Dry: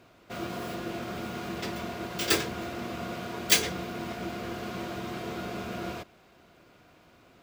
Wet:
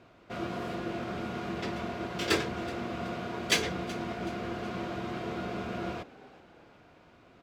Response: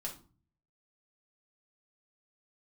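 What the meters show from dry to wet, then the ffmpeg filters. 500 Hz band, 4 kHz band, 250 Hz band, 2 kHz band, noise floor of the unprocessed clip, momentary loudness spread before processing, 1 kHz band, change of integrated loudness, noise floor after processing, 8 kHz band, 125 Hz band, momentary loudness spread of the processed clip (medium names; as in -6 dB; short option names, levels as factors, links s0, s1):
+0.5 dB, -3.5 dB, +0.5 dB, -1.0 dB, -59 dBFS, 13 LU, 0.0 dB, -2.5 dB, -58 dBFS, -7.5 dB, +0.5 dB, 9 LU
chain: -filter_complex "[0:a]aemphasis=mode=reproduction:type=50fm,asplit=2[s0][s1];[s1]asplit=3[s2][s3][s4];[s2]adelay=375,afreqshift=66,volume=0.106[s5];[s3]adelay=750,afreqshift=132,volume=0.0468[s6];[s4]adelay=1125,afreqshift=198,volume=0.0204[s7];[s5][s6][s7]amix=inputs=3:normalize=0[s8];[s0][s8]amix=inputs=2:normalize=0"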